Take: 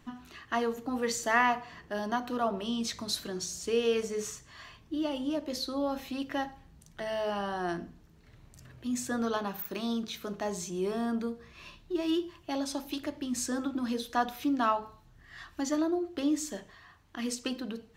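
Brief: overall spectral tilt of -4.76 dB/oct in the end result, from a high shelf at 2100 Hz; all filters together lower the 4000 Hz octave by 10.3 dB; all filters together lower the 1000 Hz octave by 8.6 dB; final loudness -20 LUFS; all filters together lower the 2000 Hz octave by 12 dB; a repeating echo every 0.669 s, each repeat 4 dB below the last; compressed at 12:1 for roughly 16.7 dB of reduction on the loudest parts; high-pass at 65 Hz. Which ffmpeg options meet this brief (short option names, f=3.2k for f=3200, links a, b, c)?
-af "highpass=65,equalizer=f=1k:t=o:g=-9,equalizer=f=2k:t=o:g=-8.5,highshelf=f=2.1k:g=-4,equalizer=f=4k:t=o:g=-6,acompressor=threshold=-43dB:ratio=12,aecho=1:1:669|1338|2007|2676|3345|4014|4683|5352|6021:0.631|0.398|0.25|0.158|0.0994|0.0626|0.0394|0.0249|0.0157,volume=26dB"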